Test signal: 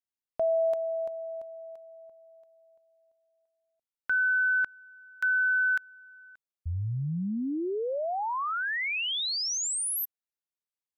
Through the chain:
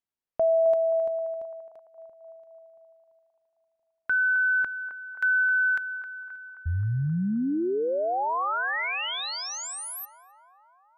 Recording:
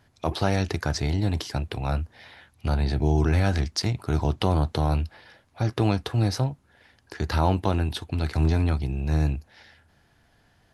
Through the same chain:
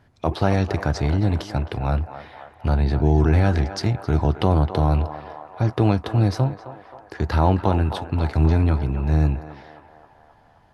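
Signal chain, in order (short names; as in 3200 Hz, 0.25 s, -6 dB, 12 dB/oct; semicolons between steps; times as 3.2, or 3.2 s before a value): high shelf 2900 Hz -11 dB; narrowing echo 0.264 s, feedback 71%, band-pass 930 Hz, level -9 dB; gain +4.5 dB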